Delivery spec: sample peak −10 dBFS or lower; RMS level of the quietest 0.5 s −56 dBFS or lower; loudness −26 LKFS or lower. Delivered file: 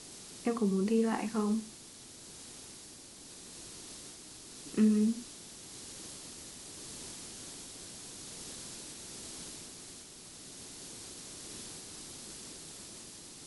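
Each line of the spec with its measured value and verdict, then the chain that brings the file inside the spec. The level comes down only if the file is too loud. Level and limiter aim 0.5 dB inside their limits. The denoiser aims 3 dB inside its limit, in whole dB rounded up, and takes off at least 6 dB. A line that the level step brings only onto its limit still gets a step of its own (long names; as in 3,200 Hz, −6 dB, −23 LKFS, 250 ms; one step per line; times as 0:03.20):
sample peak −17.0 dBFS: in spec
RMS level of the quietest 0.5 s −51 dBFS: out of spec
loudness −37.5 LKFS: in spec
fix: broadband denoise 8 dB, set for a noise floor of −51 dBFS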